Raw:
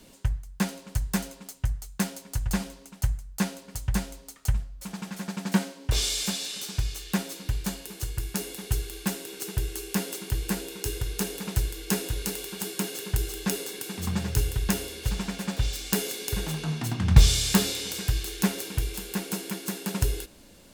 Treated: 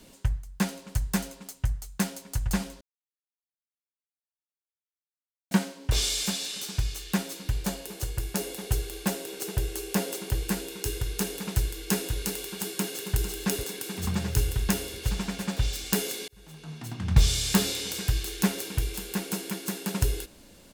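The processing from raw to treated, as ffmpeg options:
ffmpeg -i in.wav -filter_complex "[0:a]asettb=1/sr,asplit=3[link_01][link_02][link_03];[link_01]atrim=end=7.564[link_04];[link_02]atrim=start=7.56:end=10.44,asetpts=PTS-STARTPTS,afade=type=in:duration=0.004:curve=qsin,afade=type=out:start_time=2.876:duration=0.004:curve=qsin,equalizer=frequency=590:width=1.5:gain=7[link_05];[link_03]atrim=start=10.436[link_06];[link_04][link_05]acrossfade=duration=0.004:curve1=hsin:curve2=qsin[link_07];[link_07][link_06]acrossfade=duration=0.004:curve1=qsin:curve2=hsin,asplit=2[link_08][link_09];[link_09]afade=type=in:start_time=12.61:duration=0.01,afade=type=out:start_time=13.18:duration=0.01,aecho=0:1:450|900|1350|1800|2250|2700|3150|3600|4050|4500:0.266073|0.186251|0.130376|0.0912629|0.063884|0.0447188|0.0313032|0.0219122|0.0153386|0.010737[link_10];[link_08][link_10]amix=inputs=2:normalize=0,asplit=4[link_11][link_12][link_13][link_14];[link_11]atrim=end=2.81,asetpts=PTS-STARTPTS,afade=type=out:start_time=2.806:duration=0.004:curve=hsin[link_15];[link_12]atrim=start=2.81:end=5.51,asetpts=PTS-STARTPTS,volume=0[link_16];[link_13]atrim=start=5.51:end=16.28,asetpts=PTS-STARTPTS,afade=type=in:duration=0.004:curve=hsin,afade=type=out:start_time=10.766:duration=0.004:curve=hsin[link_17];[link_14]atrim=start=16.28,asetpts=PTS-STARTPTS,afade=type=in:duration=1.46[link_18];[link_15][link_16][link_17][link_18]concat=n=4:v=0:a=1" out.wav

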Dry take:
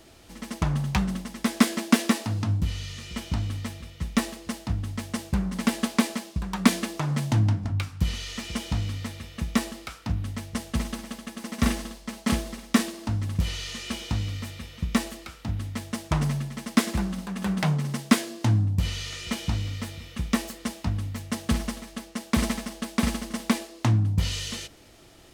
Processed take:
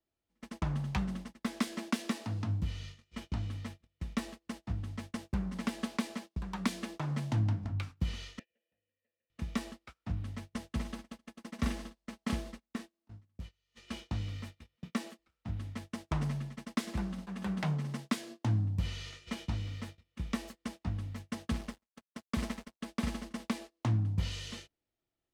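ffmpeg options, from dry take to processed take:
ffmpeg -i in.wav -filter_complex "[0:a]asettb=1/sr,asplit=3[link_01][link_02][link_03];[link_01]atrim=end=8.394[link_04];[link_02]atrim=start=8.39:end=9.3,asetpts=PTS-STARTPTS,afade=type=in:duration=0.004:curve=qsin,afade=type=out:start_time=0.906:duration=0.004:curve=qsin,asplit=3[link_05][link_06][link_07];[link_05]bandpass=frequency=530:width_type=q:width=8,volume=0dB[link_08];[link_06]bandpass=frequency=1840:width_type=q:width=8,volume=-6dB[link_09];[link_07]bandpass=frequency=2480:width_type=q:width=8,volume=-9dB[link_10];[link_08][link_09][link_10]amix=inputs=3:normalize=0[link_11];[link_03]atrim=start=9.296[link_12];[link_04][link_11]acrossfade=duration=0.004:curve1=hsin:curve2=qsin[link_13];[link_13][link_12]acrossfade=duration=0.004:curve1=qsin:curve2=hsin,asettb=1/sr,asplit=3[link_14][link_15][link_16];[link_14]atrim=end=14.764[link_17];[link_15]atrim=start=14.76:end=15.19,asetpts=PTS-STARTPTS,afade=type=in:duration=0.004:curve=qsin,afade=type=out:start_time=0.426:duration=0.004:curve=qsin,highpass=frequency=150:width=0.5412,highpass=frequency=150:width=1.3066[link_18];[link_16]atrim=start=15.186[link_19];[link_17][link_18]acrossfade=duration=0.004:curve1=hsin:curve2=qsin[link_20];[link_20][link_19]acrossfade=duration=0.004:curve1=qsin:curve2=hsin,asettb=1/sr,asplit=3[link_21][link_22][link_23];[link_21]atrim=end=21.514[link_24];[link_22]atrim=start=21.51:end=22.81,asetpts=PTS-STARTPTS,afade=type=in:duration=0.004:curve=qsin,afade=type=out:start_time=1.296:duration=0.004:curve=qsin,aeval=exprs='sgn(val(0))*max(abs(val(0))-0.0126,0)':channel_layout=same[link_25];[link_23]atrim=start=22.806[link_26];[link_24][link_25]acrossfade=duration=0.004:curve1=hsin:curve2=qsin[link_27];[link_27][link_26]acrossfade=duration=0.004:curve1=qsin:curve2=hsin,asplit=3[link_28][link_29][link_30];[link_28]atrim=end=12.91,asetpts=PTS-STARTPTS,afade=type=out:start_time=12.57:duration=0.34:curve=exp:silence=0.298538[link_31];[link_29]atrim=start=12.91:end=13.43,asetpts=PTS-STARTPTS,volume=-10.5dB[link_32];[link_30]atrim=start=13.43,asetpts=PTS-STARTPTS,afade=type=in:duration=0.34:curve=exp:silence=0.298538[link_33];[link_31][link_32][link_33]concat=n=3:v=0:a=1,agate=range=-29dB:threshold=-35dB:ratio=16:detection=peak,acrossover=split=160|3000[link_34][link_35][link_36];[link_35]acompressor=threshold=-23dB:ratio=6[link_37];[link_34][link_37][link_36]amix=inputs=3:normalize=0,highshelf=frequency=6200:gain=-10.5,volume=-8dB" out.wav

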